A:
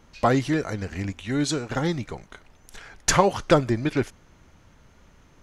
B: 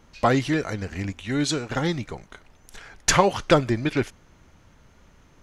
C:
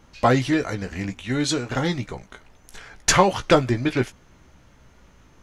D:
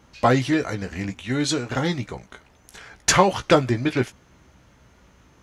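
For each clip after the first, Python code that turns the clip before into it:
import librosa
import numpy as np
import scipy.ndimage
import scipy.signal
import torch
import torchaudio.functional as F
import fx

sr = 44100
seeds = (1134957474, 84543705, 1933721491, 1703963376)

y1 = fx.dynamic_eq(x, sr, hz=2800.0, q=0.93, threshold_db=-40.0, ratio=4.0, max_db=4)
y2 = fx.doubler(y1, sr, ms=16.0, db=-7.5)
y2 = F.gain(torch.from_numpy(y2), 1.0).numpy()
y3 = scipy.signal.sosfilt(scipy.signal.butter(2, 49.0, 'highpass', fs=sr, output='sos'), y2)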